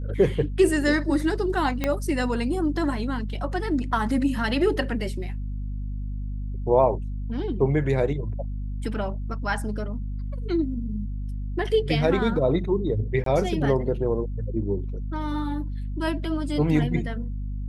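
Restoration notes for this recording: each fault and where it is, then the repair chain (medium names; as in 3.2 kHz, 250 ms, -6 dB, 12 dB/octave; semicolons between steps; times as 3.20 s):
hum 50 Hz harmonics 5 -30 dBFS
1.84 s: pop -10 dBFS
13.24–13.26 s: dropout 23 ms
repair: de-click; de-hum 50 Hz, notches 5; interpolate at 13.24 s, 23 ms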